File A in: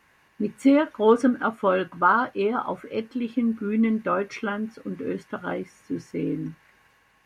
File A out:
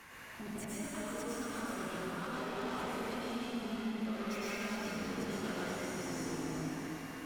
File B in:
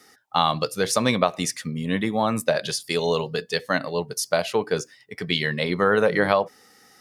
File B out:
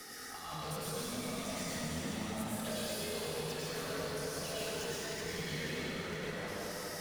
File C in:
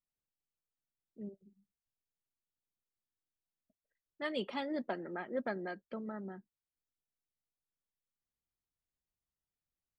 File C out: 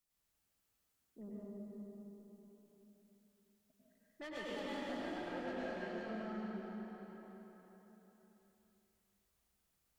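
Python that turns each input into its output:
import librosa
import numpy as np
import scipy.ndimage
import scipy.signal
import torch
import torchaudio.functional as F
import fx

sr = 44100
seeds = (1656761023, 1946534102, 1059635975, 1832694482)

p1 = fx.high_shelf(x, sr, hz=3900.0, db=7.0)
p2 = fx.over_compress(p1, sr, threshold_db=-28.0, ratio=-0.5)
p3 = fx.tube_stage(p2, sr, drive_db=38.0, bias=0.3)
p4 = p3 + fx.echo_single(p3, sr, ms=374, db=-9.0, dry=0)
p5 = fx.rev_plate(p4, sr, seeds[0], rt60_s=2.9, hf_ratio=0.85, predelay_ms=85, drr_db=-8.5)
p6 = fx.band_squash(p5, sr, depth_pct=40)
y = p6 * 10.0 ** (-8.0 / 20.0)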